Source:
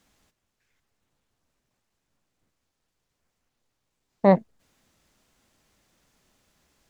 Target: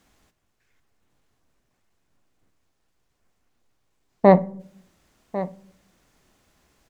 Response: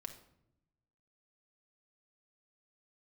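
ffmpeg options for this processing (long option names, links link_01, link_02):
-filter_complex "[0:a]aecho=1:1:1098:0.188,asplit=2[link_01][link_02];[1:a]atrim=start_sample=2205,asetrate=70560,aresample=44100,lowpass=2900[link_03];[link_02][link_03]afir=irnorm=-1:irlink=0,volume=0.5dB[link_04];[link_01][link_04]amix=inputs=2:normalize=0,volume=2dB"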